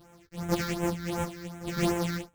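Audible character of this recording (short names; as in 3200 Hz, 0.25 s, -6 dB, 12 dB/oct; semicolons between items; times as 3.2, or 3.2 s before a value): a buzz of ramps at a fixed pitch in blocks of 256 samples; phasing stages 6, 2.7 Hz, lowest notch 710–4500 Hz; tremolo saw down 1.7 Hz, depth 45%; a shimmering, thickened sound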